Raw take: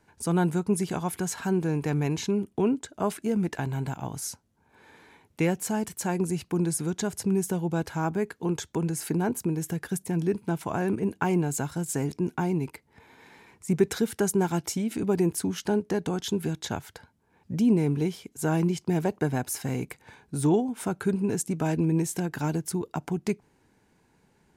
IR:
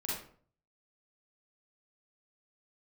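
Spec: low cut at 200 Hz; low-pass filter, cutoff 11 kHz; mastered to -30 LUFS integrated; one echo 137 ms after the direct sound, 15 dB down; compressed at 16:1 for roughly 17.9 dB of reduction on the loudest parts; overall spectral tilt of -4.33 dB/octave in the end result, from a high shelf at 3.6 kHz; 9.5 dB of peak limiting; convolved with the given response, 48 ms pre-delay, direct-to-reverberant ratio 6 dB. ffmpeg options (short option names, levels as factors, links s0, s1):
-filter_complex "[0:a]highpass=200,lowpass=11000,highshelf=f=3600:g=7,acompressor=threshold=0.02:ratio=16,alimiter=level_in=1.58:limit=0.0631:level=0:latency=1,volume=0.631,aecho=1:1:137:0.178,asplit=2[s0][s1];[1:a]atrim=start_sample=2205,adelay=48[s2];[s1][s2]afir=irnorm=-1:irlink=0,volume=0.355[s3];[s0][s3]amix=inputs=2:normalize=0,volume=2.82"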